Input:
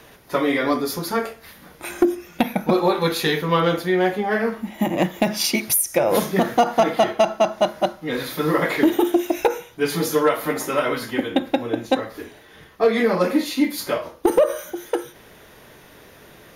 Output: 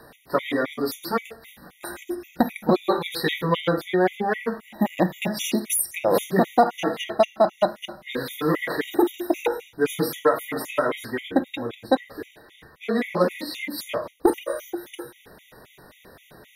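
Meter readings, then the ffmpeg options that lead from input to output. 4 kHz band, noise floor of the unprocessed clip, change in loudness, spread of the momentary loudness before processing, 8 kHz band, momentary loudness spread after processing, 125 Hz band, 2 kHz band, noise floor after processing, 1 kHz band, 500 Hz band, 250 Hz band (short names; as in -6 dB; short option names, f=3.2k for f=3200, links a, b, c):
-4.5 dB, -48 dBFS, -3.5 dB, 8 LU, -4.0 dB, 13 LU, -3.0 dB, -3.5 dB, -55 dBFS, -3.0 dB, -3.5 dB, -4.0 dB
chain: -af "equalizer=f=6k:t=o:w=0.49:g=-6,bandreject=f=50:t=h:w=6,bandreject=f=100:t=h:w=6,bandreject=f=150:t=h:w=6,afftfilt=real='re*gt(sin(2*PI*3.8*pts/sr)*(1-2*mod(floor(b*sr/1024/1900),2)),0)':imag='im*gt(sin(2*PI*3.8*pts/sr)*(1-2*mod(floor(b*sr/1024/1900),2)),0)':win_size=1024:overlap=0.75"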